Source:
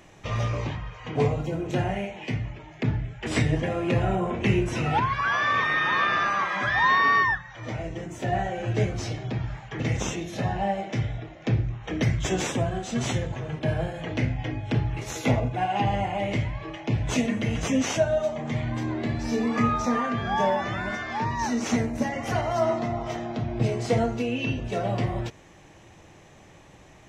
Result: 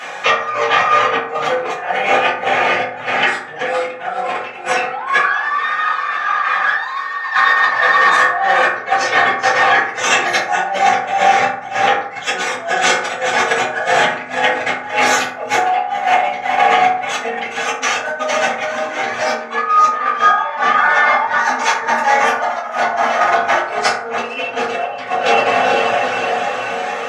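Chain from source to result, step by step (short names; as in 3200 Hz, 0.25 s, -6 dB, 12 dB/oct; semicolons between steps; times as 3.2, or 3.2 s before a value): soft clip -20 dBFS, distortion -14 dB; diffused feedback echo 0.456 s, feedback 65%, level -6 dB; negative-ratio compressor -32 dBFS, ratio -0.5; HPF 1200 Hz 12 dB/oct; reverb removal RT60 0.88 s; LPF 1800 Hz 6 dB/oct; reverb RT60 0.65 s, pre-delay 3 ms, DRR -9.5 dB; maximiser +21.5 dB; gain -1 dB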